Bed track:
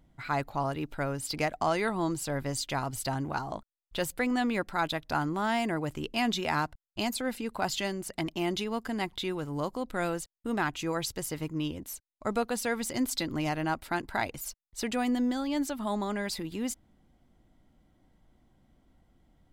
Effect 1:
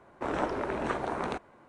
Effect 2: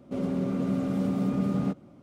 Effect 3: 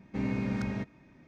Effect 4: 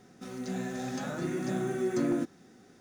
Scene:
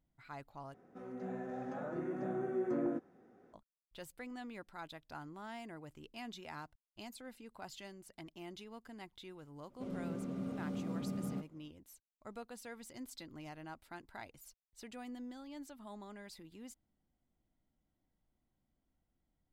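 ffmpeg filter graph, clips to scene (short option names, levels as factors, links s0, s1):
-filter_complex "[0:a]volume=0.119[s0];[4:a]firequalizer=gain_entry='entry(160,0);entry(490,9);entry(4100,-17)':delay=0.05:min_phase=1[s1];[s0]asplit=2[s2][s3];[s2]atrim=end=0.744[s4];[s1]atrim=end=2.8,asetpts=PTS-STARTPTS,volume=0.282[s5];[s3]atrim=start=3.536[s6];[2:a]atrim=end=2.02,asetpts=PTS-STARTPTS,volume=0.224,afade=t=in:d=0.004:c=hsin,afade=t=out:st=2.016:d=0.004:c=hsin,adelay=9690[s7];[s4][s5]acrossfade=d=0.004:c1=hsin:c2=hsin[s8];[s8][s6]acrossfade=d=0.004:c1=hsin:c2=hsin[s9];[s9][s7]amix=inputs=2:normalize=0"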